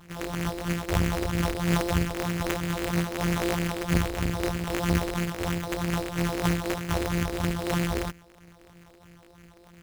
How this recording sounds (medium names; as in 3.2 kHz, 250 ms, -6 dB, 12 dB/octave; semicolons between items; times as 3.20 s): a buzz of ramps at a fixed pitch in blocks of 256 samples; phasing stages 4, 3.1 Hz, lowest notch 150–1100 Hz; aliases and images of a low sample rate 4.6 kHz, jitter 20%